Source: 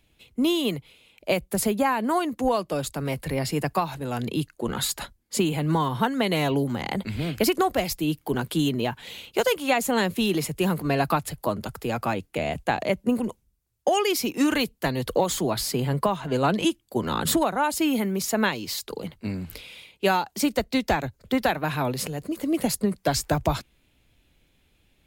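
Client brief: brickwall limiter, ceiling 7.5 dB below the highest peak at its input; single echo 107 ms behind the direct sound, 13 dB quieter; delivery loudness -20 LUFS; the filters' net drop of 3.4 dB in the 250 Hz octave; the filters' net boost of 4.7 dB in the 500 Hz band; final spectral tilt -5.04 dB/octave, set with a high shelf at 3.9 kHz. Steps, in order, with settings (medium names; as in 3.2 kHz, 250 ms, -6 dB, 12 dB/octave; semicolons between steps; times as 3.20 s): peaking EQ 250 Hz -7.5 dB; peaking EQ 500 Hz +8 dB; treble shelf 3.9 kHz -6 dB; peak limiter -13.5 dBFS; delay 107 ms -13 dB; trim +6 dB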